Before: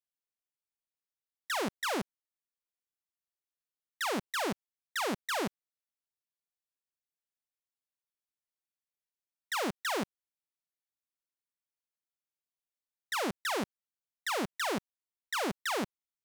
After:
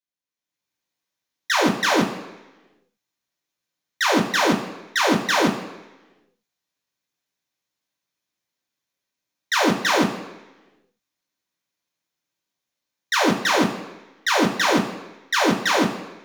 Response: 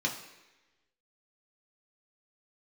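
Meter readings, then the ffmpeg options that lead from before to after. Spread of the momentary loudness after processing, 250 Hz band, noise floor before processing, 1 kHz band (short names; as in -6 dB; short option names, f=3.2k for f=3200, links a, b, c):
9 LU, +16.5 dB, under -85 dBFS, +13.5 dB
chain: -filter_complex "[0:a]dynaudnorm=f=140:g=7:m=11.5dB[a];[1:a]atrim=start_sample=2205[b];[a][b]afir=irnorm=-1:irlink=0,volume=-4dB"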